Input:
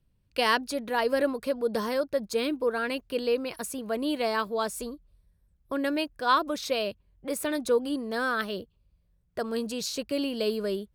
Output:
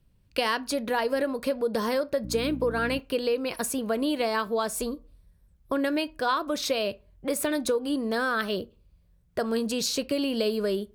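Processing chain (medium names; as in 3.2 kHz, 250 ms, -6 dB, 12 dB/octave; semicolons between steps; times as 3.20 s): compression, threshold -29 dBFS, peak gain reduction 10.5 dB; on a send at -17 dB: reverberation RT60 0.35 s, pre-delay 15 ms; 2.23–2.98 s: on the sum: mains buzz 60 Hz, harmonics 5, -43 dBFS -1 dB/octave; trim +6 dB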